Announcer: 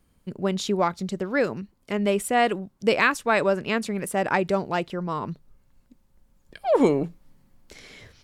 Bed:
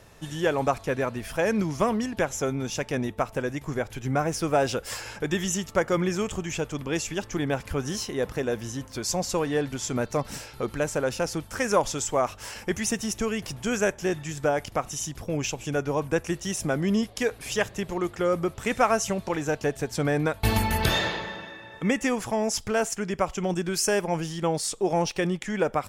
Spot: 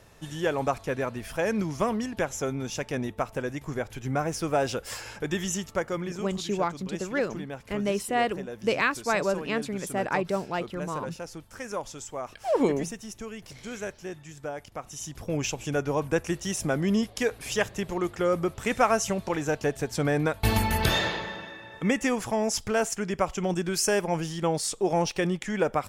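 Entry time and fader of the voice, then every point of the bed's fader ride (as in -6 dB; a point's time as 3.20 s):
5.80 s, -4.5 dB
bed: 5.59 s -2.5 dB
6.33 s -11 dB
14.73 s -11 dB
15.31 s -0.5 dB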